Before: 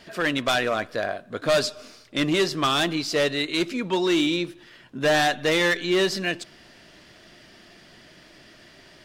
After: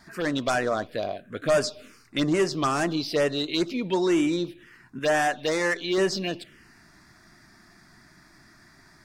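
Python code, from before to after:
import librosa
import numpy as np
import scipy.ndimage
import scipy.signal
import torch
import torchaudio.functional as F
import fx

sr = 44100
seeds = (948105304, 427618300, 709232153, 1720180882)

y = fx.low_shelf(x, sr, hz=300.0, db=-8.0, at=(4.99, 5.98))
y = fx.env_phaser(y, sr, low_hz=480.0, high_hz=4000.0, full_db=-18.0)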